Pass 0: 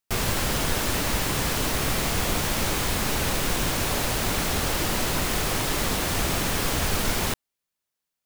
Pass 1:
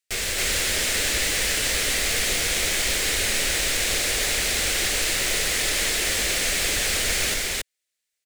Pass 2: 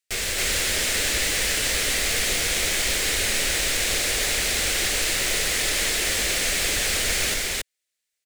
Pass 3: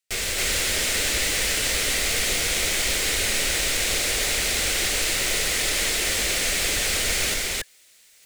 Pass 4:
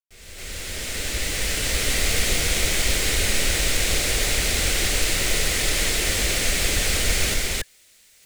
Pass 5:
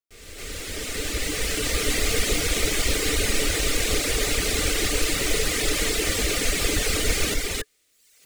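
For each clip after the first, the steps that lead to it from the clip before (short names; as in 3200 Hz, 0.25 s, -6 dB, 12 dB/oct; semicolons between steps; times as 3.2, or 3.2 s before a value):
graphic EQ 125/250/500/1000/2000/4000/8000 Hz -10/-5/+5/-10/+10/+5/+9 dB; on a send: loudspeakers at several distances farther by 39 m -11 dB, 95 m 0 dB; on the sum: gain -5.5 dB
nothing audible
notch 1700 Hz, Q 22; reverse; upward compressor, threshold -33 dBFS; reverse
opening faded in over 2.03 s; low shelf 230 Hz +9.5 dB
reverb removal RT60 0.86 s; small resonant body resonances 300/430/1200 Hz, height 10 dB, ringing for 60 ms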